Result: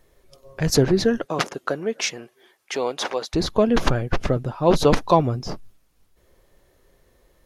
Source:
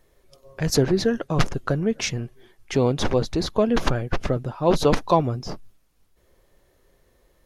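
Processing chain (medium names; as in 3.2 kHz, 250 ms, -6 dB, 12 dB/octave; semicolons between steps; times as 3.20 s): 1.24–3.33 s: high-pass 290 Hz -> 700 Hz 12 dB/octave; trim +2 dB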